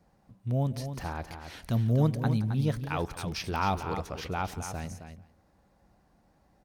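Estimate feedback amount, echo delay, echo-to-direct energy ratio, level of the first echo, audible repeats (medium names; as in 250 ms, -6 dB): no regular repeats, 175 ms, -8.5 dB, -18.0 dB, 3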